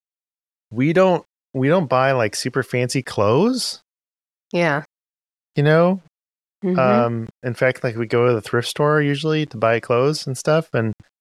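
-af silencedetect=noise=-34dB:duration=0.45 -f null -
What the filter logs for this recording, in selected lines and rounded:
silence_start: 0.00
silence_end: 0.72 | silence_duration: 0.72
silence_start: 3.76
silence_end: 4.51 | silence_duration: 0.75
silence_start: 4.83
silence_end: 5.57 | silence_duration: 0.73
silence_start: 5.98
silence_end: 6.63 | silence_duration: 0.65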